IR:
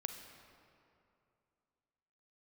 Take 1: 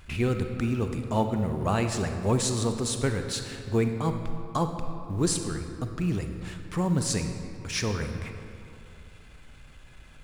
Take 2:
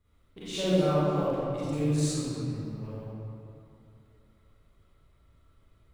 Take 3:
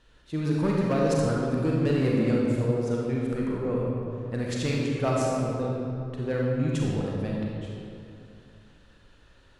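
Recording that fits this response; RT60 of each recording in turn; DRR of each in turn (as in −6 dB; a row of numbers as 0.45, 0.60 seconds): 1; 2.6, 2.6, 2.6 seconds; 6.0, −12.0, −3.5 decibels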